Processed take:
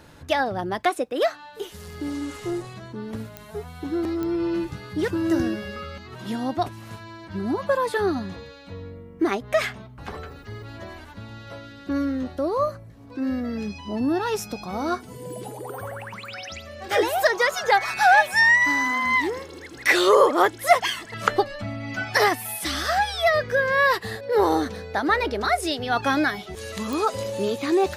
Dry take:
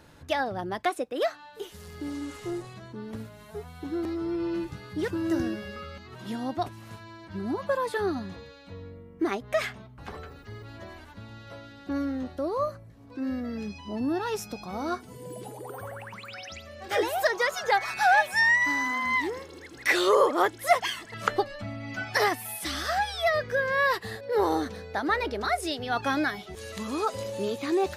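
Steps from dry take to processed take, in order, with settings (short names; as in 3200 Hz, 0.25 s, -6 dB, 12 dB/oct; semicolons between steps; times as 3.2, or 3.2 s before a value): 11.58–12.26 bell 780 Hz -8.5 dB 0.28 oct; pops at 3.37/4.23/26.93, -22 dBFS; gain +5 dB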